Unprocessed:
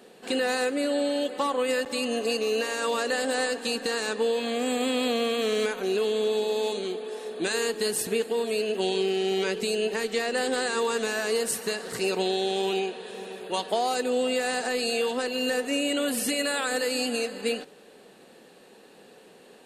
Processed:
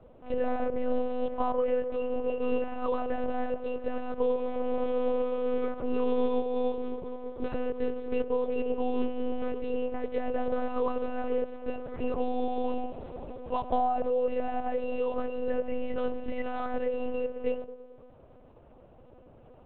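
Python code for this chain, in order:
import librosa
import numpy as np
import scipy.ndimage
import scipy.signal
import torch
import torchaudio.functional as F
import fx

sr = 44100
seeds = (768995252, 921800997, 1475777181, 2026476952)

p1 = scipy.signal.savgol_filter(x, 65, 4, mode='constant')
p2 = fx.low_shelf(p1, sr, hz=430.0, db=-8.0)
p3 = p2 + fx.echo_banded(p2, sr, ms=111, feedback_pct=59, hz=360.0, wet_db=-10, dry=0)
p4 = fx.lpc_monotone(p3, sr, seeds[0], pitch_hz=250.0, order=8)
y = F.gain(torch.from_numpy(p4), 2.5).numpy()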